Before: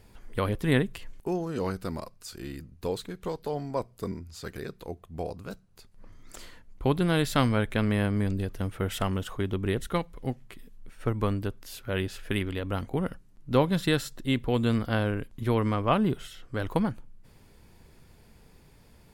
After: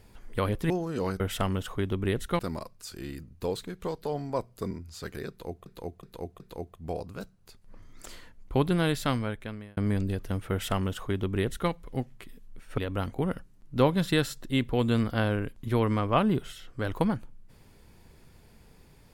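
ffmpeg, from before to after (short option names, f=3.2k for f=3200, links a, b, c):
-filter_complex "[0:a]asplit=9[a][b][c][d][e][f][g][h][i];[a]atrim=end=0.702[j];[b]atrim=start=1.298:end=1.802[k];[c]atrim=start=8.808:end=10.002[l];[d]atrim=start=1.798:end=5.072[m];[e]atrim=start=4.698:end=5.072[n];[f]atrim=start=4.698:end=5.072[o];[g]atrim=start=4.698:end=8.07,asetpts=PTS-STARTPTS,afade=t=out:st=2.312:d=1.06[p];[h]atrim=start=8.07:end=11.082,asetpts=PTS-STARTPTS,afade=t=in:d=0.004:c=hsin[q];[i]atrim=start=12.528[r];[j][k]acrossfade=d=0.004:c1=hsin:c2=hsin[s];[s][l]acrossfade=d=0.004:c1=hsin:c2=hsin[t];[t][m]acrossfade=d=0.004:c1=hsin:c2=hsin[u];[u][n]acrossfade=d=0.004:c1=hsin:c2=hsin[v];[v][o]acrossfade=d=0.004:c1=hsin:c2=hsin[w];[p][q]concat=n=2:v=0:a=1[x];[w][x]acrossfade=d=0.004:c1=hsin:c2=hsin[y];[y][r]acrossfade=d=0.004:c1=hsin:c2=hsin"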